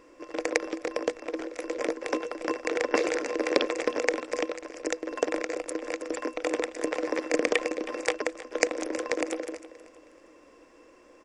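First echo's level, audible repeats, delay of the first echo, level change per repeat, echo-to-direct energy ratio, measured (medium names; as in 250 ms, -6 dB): -16.5 dB, 2, 318 ms, -10.0 dB, -16.0 dB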